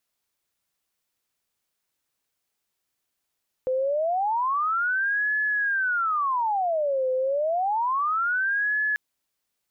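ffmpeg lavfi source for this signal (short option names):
-f lavfi -i "aevalsrc='0.0841*sin(2*PI*(1112*t-598/(2*PI*0.29)*sin(2*PI*0.29*t)))':d=5.29:s=44100"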